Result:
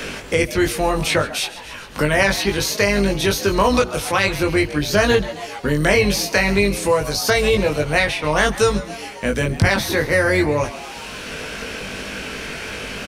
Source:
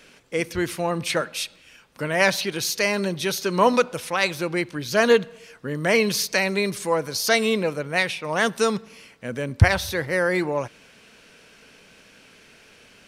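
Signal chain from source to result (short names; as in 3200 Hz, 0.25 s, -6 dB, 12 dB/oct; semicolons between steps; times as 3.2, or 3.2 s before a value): octaver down 2 oct, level -4 dB; doubler 20 ms -2.5 dB; on a send: frequency-shifting echo 0.136 s, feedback 51%, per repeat +120 Hz, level -18 dB; on the sum: maximiser +5 dB; three-band squash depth 70%; gain -2 dB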